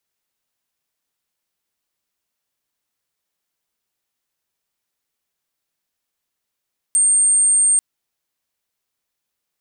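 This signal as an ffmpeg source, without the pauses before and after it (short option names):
-f lavfi -i "sine=f=8650:d=0.84:r=44100,volume=6.56dB"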